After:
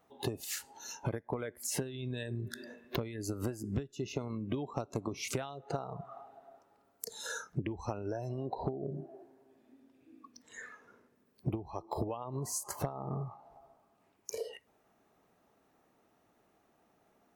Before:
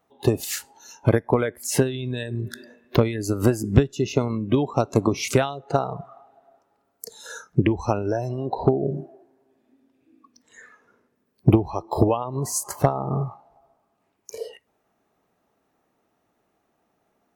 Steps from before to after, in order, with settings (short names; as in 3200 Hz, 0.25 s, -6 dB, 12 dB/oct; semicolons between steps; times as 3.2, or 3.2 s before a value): compressor 4:1, threshold -36 dBFS, peak gain reduction 22 dB